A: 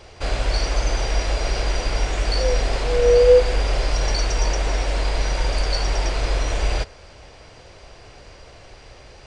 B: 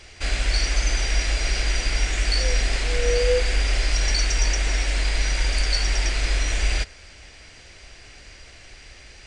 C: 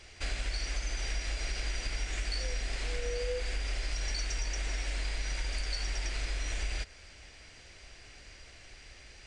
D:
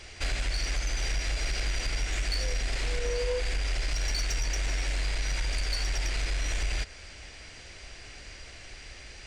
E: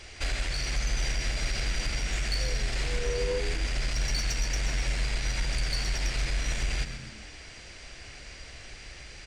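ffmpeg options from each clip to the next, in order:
ffmpeg -i in.wav -af "equalizer=frequency=125:width_type=o:width=1:gain=-7,equalizer=frequency=500:width_type=o:width=1:gain=-8,equalizer=frequency=1000:width_type=o:width=1:gain=-8,equalizer=frequency=2000:width_type=o:width=1:gain=6,equalizer=frequency=8000:width_type=o:width=1:gain=6" out.wav
ffmpeg -i in.wav -af "acompressor=threshold=-23dB:ratio=6,volume=-7dB" out.wav
ffmpeg -i in.wav -af "asoftclip=type=tanh:threshold=-28.5dB,volume=6.5dB" out.wav
ffmpeg -i in.wav -filter_complex "[0:a]asplit=6[link_01][link_02][link_03][link_04][link_05][link_06];[link_02]adelay=129,afreqshift=-86,volume=-9dB[link_07];[link_03]adelay=258,afreqshift=-172,volume=-16.7dB[link_08];[link_04]adelay=387,afreqshift=-258,volume=-24.5dB[link_09];[link_05]adelay=516,afreqshift=-344,volume=-32.2dB[link_10];[link_06]adelay=645,afreqshift=-430,volume=-40dB[link_11];[link_01][link_07][link_08][link_09][link_10][link_11]amix=inputs=6:normalize=0" out.wav

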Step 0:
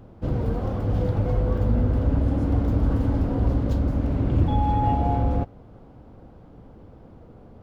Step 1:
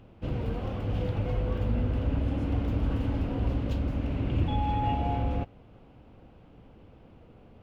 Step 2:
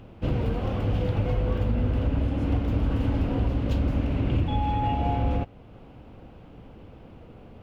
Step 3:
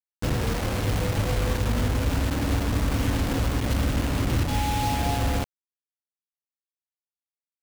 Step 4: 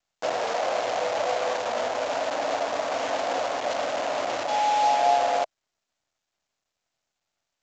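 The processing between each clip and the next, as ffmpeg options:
ffmpeg -i in.wav -af "equalizer=frequency=2700:width_type=o:width=0.85:gain=13,volume=-6.5dB" out.wav
ffmpeg -i in.wav -af "alimiter=limit=-22dB:level=0:latency=1:release=474,volume=6.5dB" out.wav
ffmpeg -i in.wav -af "acrusher=bits=4:mix=0:aa=0.000001" out.wav
ffmpeg -i in.wav -af "highpass=frequency=650:width_type=q:width=4.9" -ar 16000 -c:a pcm_mulaw out.wav

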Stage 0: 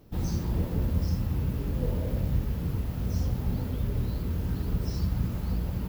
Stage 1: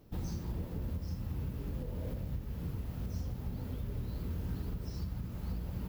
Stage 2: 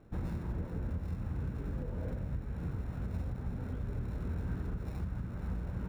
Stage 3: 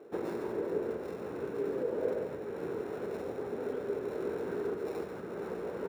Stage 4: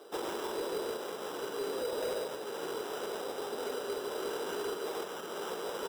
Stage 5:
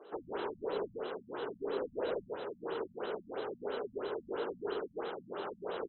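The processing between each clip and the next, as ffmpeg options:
ffmpeg -i in.wav -af "alimiter=level_in=0.5dB:limit=-24dB:level=0:latency=1:release=459,volume=-0.5dB,volume=-4.5dB" out.wav
ffmpeg -i in.wav -filter_complex "[0:a]equalizer=frequency=1500:width_type=o:width=0.38:gain=8,acrossover=split=2600[link_01][link_02];[link_02]acrusher=samples=28:mix=1:aa=0.000001[link_03];[link_01][link_03]amix=inputs=2:normalize=0,volume=1dB" out.wav
ffmpeg -i in.wav -af "highpass=frequency=410:width_type=q:width=4.9,aecho=1:1:140:0.422,volume=5dB" out.wav
ffmpeg -i in.wav -af "bandpass=frequency=1200:width_type=q:width=1.1:csg=0,acrusher=samples=10:mix=1:aa=0.000001,asoftclip=type=hard:threshold=-38.5dB,volume=8dB" out.wav
ffmpeg -i in.wav -af "aecho=1:1:67.06|107.9:0.631|0.501,afftfilt=real='re*lt(b*sr/1024,220*pow(4500/220,0.5+0.5*sin(2*PI*3*pts/sr)))':imag='im*lt(b*sr/1024,220*pow(4500/220,0.5+0.5*sin(2*PI*3*pts/sr)))':win_size=1024:overlap=0.75,volume=-2dB" out.wav

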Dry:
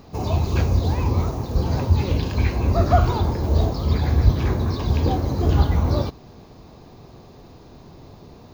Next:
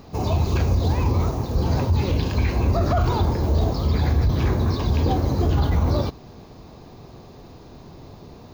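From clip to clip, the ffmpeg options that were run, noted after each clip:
ffmpeg -i in.wav -af "alimiter=limit=-13.5dB:level=0:latency=1:release=27,volume=1.5dB" out.wav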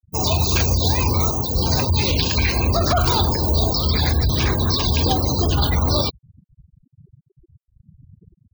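ffmpeg -i in.wav -af "crystalizer=i=9.5:c=0,afftfilt=real='re*gte(hypot(re,im),0.0631)':imag='im*gte(hypot(re,im),0.0631)':win_size=1024:overlap=0.75" out.wav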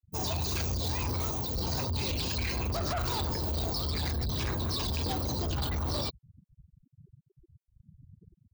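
ffmpeg -i in.wav -af "asoftclip=type=tanh:threshold=-21.5dB,volume=-7dB" out.wav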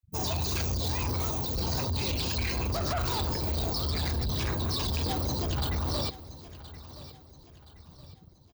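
ffmpeg -i in.wav -af "aecho=1:1:1022|2044|3066|4088:0.15|0.0613|0.0252|0.0103,volume=1.5dB" out.wav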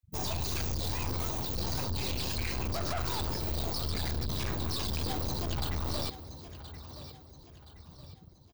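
ffmpeg -i in.wav -af "aeval=exprs='clip(val(0),-1,0.00841)':channel_layout=same" out.wav

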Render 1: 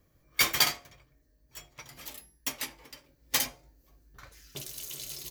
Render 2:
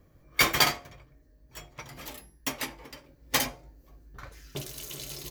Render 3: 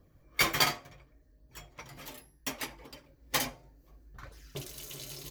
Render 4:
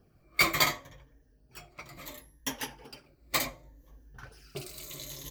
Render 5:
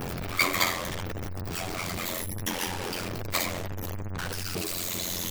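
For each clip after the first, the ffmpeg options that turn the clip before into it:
ffmpeg -i in.wav -af "highshelf=frequency=2300:gain=-9.5,volume=8dB" out.wav
ffmpeg -i in.wav -af "flanger=delay=0.2:depth=7.9:regen=-43:speed=0.69:shape=sinusoidal" out.wav
ffmpeg -i in.wav -af "afftfilt=real='re*pow(10,9/40*sin(2*PI*(1.1*log(max(b,1)*sr/1024/100)/log(2)-(-0.69)*(pts-256)/sr)))':imag='im*pow(10,9/40*sin(2*PI*(1.1*log(max(b,1)*sr/1024/100)/log(2)-(-0.69)*(pts-256)/sr)))':win_size=1024:overlap=0.75" out.wav
ffmpeg -i in.wav -af "aeval=exprs='val(0)+0.5*0.0596*sgn(val(0))':channel_layout=same,afftfilt=real='re*gte(hypot(re,im),0.00631)':imag='im*gte(hypot(re,im),0.00631)':win_size=1024:overlap=0.75,aeval=exprs='val(0)*sin(2*PI*44*n/s)':channel_layout=same" out.wav

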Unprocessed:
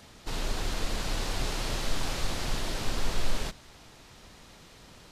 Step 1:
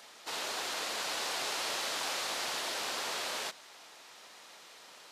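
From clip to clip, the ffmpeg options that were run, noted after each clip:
ffmpeg -i in.wav -af "highpass=590,volume=1.5dB" out.wav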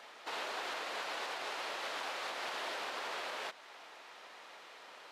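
ffmpeg -i in.wav -af "bass=frequency=250:gain=-10,treble=frequency=4000:gain=-14,alimiter=level_in=9.5dB:limit=-24dB:level=0:latency=1:release=237,volume=-9.5dB,volume=3dB" out.wav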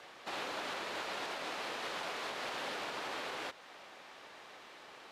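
ffmpeg -i in.wav -af "afreqshift=-110" out.wav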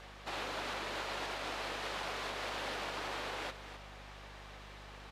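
ffmpeg -i in.wav -af "aeval=exprs='val(0)+0.00178*(sin(2*PI*50*n/s)+sin(2*PI*2*50*n/s)/2+sin(2*PI*3*50*n/s)/3+sin(2*PI*4*50*n/s)/4+sin(2*PI*5*50*n/s)/5)':channel_layout=same,aecho=1:1:259:0.282" out.wav

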